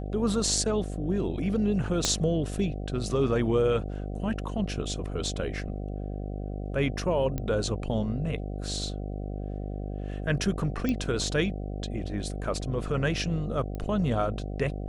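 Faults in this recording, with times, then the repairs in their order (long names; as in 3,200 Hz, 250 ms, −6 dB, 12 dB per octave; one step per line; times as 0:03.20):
mains buzz 50 Hz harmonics 15 −34 dBFS
0:02.05: click −9 dBFS
0:07.38: click −18 dBFS
0:10.89: click −16 dBFS
0:13.75: click −24 dBFS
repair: click removal
hum removal 50 Hz, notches 15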